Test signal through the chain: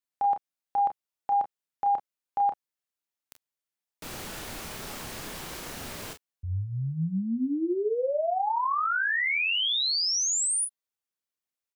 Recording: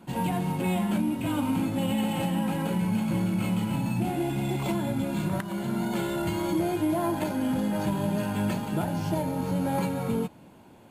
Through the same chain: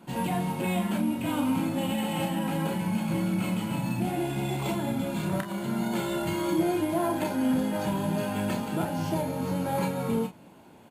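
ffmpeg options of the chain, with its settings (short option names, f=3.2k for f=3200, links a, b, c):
-af "lowshelf=f=110:g=-8,aecho=1:1:31|43:0.447|0.237"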